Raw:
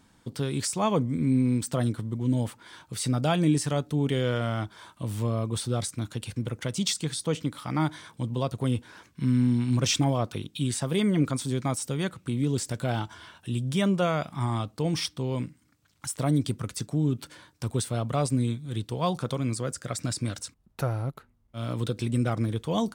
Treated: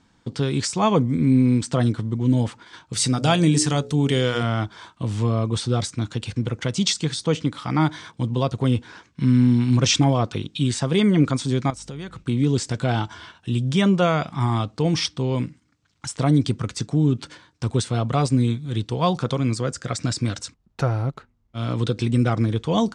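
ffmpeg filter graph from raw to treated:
ffmpeg -i in.wav -filter_complex "[0:a]asettb=1/sr,asplit=3[link_01][link_02][link_03];[link_01]atrim=end=2.934[link_04];[link_02]atrim=start=2.93:end=4.43,asetpts=PTS-STARTPTS,afade=type=in:duration=0.004:curve=qsin,afade=type=out:start_time=1.496:duration=0.004:curve=qsin,aemphasis=mode=production:type=50fm,bandreject=frequency=60.94:width_type=h:width=4,bandreject=frequency=121.88:width_type=h:width=4,bandreject=frequency=182.82:width_type=h:width=4,bandreject=frequency=243.76:width_type=h:width=4,bandreject=frequency=304.7:width_type=h:width=4,bandreject=frequency=365.64:width_type=h:width=4,bandreject=frequency=426.58:width_type=h:width=4,bandreject=frequency=487.52:width_type=h:width=4,bandreject=frequency=548.46:width_type=h:width=4,bandreject=frequency=609.4:width_type=h:width=4[link_05];[link_03]atrim=start=4.426[link_06];[link_04][link_05]acrossfade=duration=0.004:curve1=hsin:curve2=qsin[link_07];[link_07][link_06]acrossfade=duration=0.004:curve1=qsin:curve2=hsin,asettb=1/sr,asplit=3[link_08][link_09][link_10];[link_08]atrim=end=11.704[link_11];[link_09]atrim=start=11.7:end=12.24,asetpts=PTS-STARTPTS,afade=type=in:duration=0.004:curve=qsin,afade=type=out:start_time=0.536:duration=0.004:curve=qsin,acompressor=threshold=-37dB:ratio=5:attack=3.2:release=140:knee=1:detection=peak,aeval=exprs='val(0)+0.00158*(sin(2*PI*50*n/s)+sin(2*PI*2*50*n/s)/2+sin(2*PI*3*50*n/s)/3+sin(2*PI*4*50*n/s)/4+sin(2*PI*5*50*n/s)/5)':channel_layout=same[link_12];[link_10]atrim=start=12.236[link_13];[link_11][link_12]acrossfade=duration=0.004:curve1=hsin:curve2=qsin[link_14];[link_14][link_13]acrossfade=duration=0.004:curve1=qsin:curve2=hsin,agate=range=-6dB:threshold=-47dB:ratio=16:detection=peak,lowpass=frequency=7300:width=0.5412,lowpass=frequency=7300:width=1.3066,bandreject=frequency=590:width=12,volume=6.5dB" out.wav

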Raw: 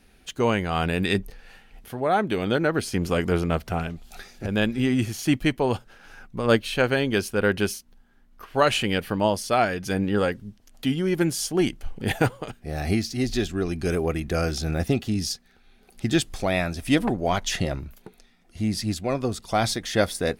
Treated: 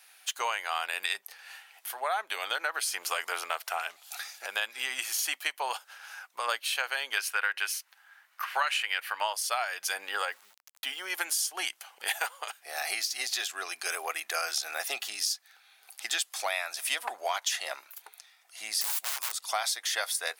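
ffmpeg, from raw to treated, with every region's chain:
ffmpeg -i in.wav -filter_complex "[0:a]asettb=1/sr,asplit=3[link_01][link_02][link_03];[link_01]atrim=end=7.174[link_04];[link_02]atrim=start=7.17:end=9.33,asetpts=PTS-STARTPTS,afade=type=in:duration=0.004:curve=qsin,afade=type=out:start_time=2.156:duration=0.004:curve=qsin,equalizer=frequency=1900:width=0.68:gain=10.5,bandreject=frequency=3300:width=25[link_05];[link_03]atrim=start=9.326[link_06];[link_04][link_05]acrossfade=duration=0.004:curve1=hsin:curve2=qsin[link_07];[link_07][link_06]acrossfade=duration=0.004:curve1=qsin:curve2=hsin,asettb=1/sr,asplit=3[link_08][link_09][link_10];[link_08]atrim=end=10.254[link_11];[link_09]atrim=start=10.25:end=11.1,asetpts=PTS-STARTPTS,afade=type=in:duration=0.004:curve=qsin,afade=type=out:start_time=0.846:duration=0.004:curve=qsin,highpass=43,highshelf=frequency=3300:gain=-7.5,aeval=exprs='val(0)*gte(abs(val(0)),0.00266)':channel_layout=same[link_12];[link_10]atrim=start=11.096[link_13];[link_11][link_12]acrossfade=duration=0.004:curve1=hsin:curve2=qsin[link_14];[link_14][link_13]acrossfade=duration=0.004:curve1=qsin:curve2=hsin,asettb=1/sr,asplit=3[link_15][link_16][link_17];[link_15]atrim=end=18.814[link_18];[link_16]atrim=start=18.81:end=19.32,asetpts=PTS-STARTPTS,afade=type=in:duration=0.004:curve=qsin,afade=type=out:start_time=0.506:duration=0.004:curve=qsin,highpass=86,aemphasis=mode=production:type=75kf,aeval=exprs='(mod(20*val(0)+1,2)-1)/20':channel_layout=same[link_19];[link_17]atrim=start=19.316[link_20];[link_18][link_19]acrossfade=duration=0.004:curve1=hsin:curve2=qsin[link_21];[link_21][link_20]acrossfade=duration=0.004:curve1=qsin:curve2=hsin,highpass=frequency=810:width=0.5412,highpass=frequency=810:width=1.3066,highshelf=frequency=6900:gain=9.5,acompressor=threshold=-30dB:ratio=6,volume=3dB" out.wav

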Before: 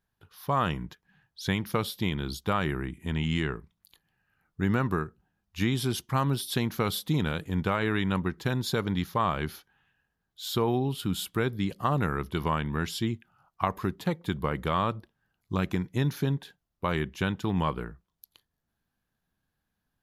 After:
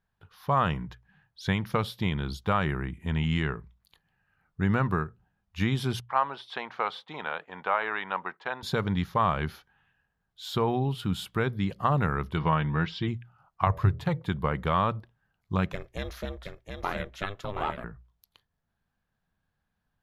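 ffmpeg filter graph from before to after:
ffmpeg -i in.wav -filter_complex "[0:a]asettb=1/sr,asplit=3[link_01][link_02][link_03];[link_01]atrim=end=6.004[link_04];[link_02]atrim=start=6:end=8.63,asetpts=PTS-STARTPTS,afade=type=in:duration=0.004:curve=qsin,afade=type=out:start_time=2.626:duration=0.004:curve=qsin,agate=range=-10dB:threshold=-47dB:ratio=16:release=100:detection=peak,highpass=630,lowpass=2900,equalizer=frequency=810:width=1.5:gain=5[link_05];[link_03]atrim=start=8.626[link_06];[link_04][link_05]acrossfade=duration=0.004:curve1=hsin:curve2=qsin[link_07];[link_07][link_06]acrossfade=duration=0.004:curve1=qsin:curve2=hsin,asettb=1/sr,asplit=3[link_08][link_09][link_10];[link_08]atrim=end=12.374[link_11];[link_09]atrim=start=12.37:end=13.08,asetpts=PTS-STARTPTS,afade=type=in:duration=0.004:curve=qsin,afade=type=out:start_time=0.706:duration=0.004:curve=qsin,lowpass=frequency=4600:width=0.5412,lowpass=frequency=4600:width=1.3066,aecho=1:1:6.3:0.46,atrim=end_sample=31311[link_12];[link_10]atrim=start=13.076[link_13];[link_11][link_12]acrossfade=duration=0.004:curve1=hsin:curve2=qsin[link_14];[link_14][link_13]acrossfade=duration=0.004:curve1=qsin:curve2=hsin,asettb=1/sr,asplit=3[link_15][link_16][link_17];[link_15]atrim=end=13.664[link_18];[link_16]atrim=start=13.66:end=14.22,asetpts=PTS-STARTPTS,afade=type=in:duration=0.004:curve=qsin,afade=type=out:start_time=0.556:duration=0.004:curve=qsin,lowshelf=frequency=160:width_type=q:width=3:gain=7,bandreject=frequency=81.58:width_type=h:width=4,bandreject=frequency=163.16:width_type=h:width=4,bandreject=frequency=244.74:width_type=h:width=4,bandreject=frequency=326.32:width_type=h:width=4,bandreject=frequency=407.9:width_type=h:width=4,bandreject=frequency=489.48:width_type=h:width=4,bandreject=frequency=571.06:width_type=h:width=4,bandreject=frequency=652.64:width_type=h:width=4[link_19];[link_17]atrim=start=14.216[link_20];[link_18][link_19]acrossfade=duration=0.004:curve1=hsin:curve2=qsin[link_21];[link_21][link_20]acrossfade=duration=0.004:curve1=qsin:curve2=hsin,asettb=1/sr,asplit=3[link_22][link_23][link_24];[link_22]atrim=end=15.734[link_25];[link_23]atrim=start=15.73:end=17.84,asetpts=PTS-STARTPTS,afade=type=in:duration=0.004:curve=qsin,afade=type=out:start_time=2.106:duration=0.004:curve=qsin,bass=frequency=250:gain=-11,treble=frequency=4000:gain=5,aeval=exprs='val(0)*sin(2*PI*200*n/s)':channel_layout=same,aecho=1:1:722:0.531,atrim=end_sample=93051[link_26];[link_24]atrim=start=17.836[link_27];[link_25][link_26]acrossfade=duration=0.004:curve1=hsin:curve2=qsin[link_28];[link_28][link_27]acrossfade=duration=0.004:curve1=qsin:curve2=hsin,lowpass=frequency=2200:poles=1,equalizer=frequency=310:width_type=o:width=1:gain=-7,bandreject=frequency=60:width_type=h:width=6,bandreject=frequency=120:width_type=h:width=6,volume=3.5dB" out.wav

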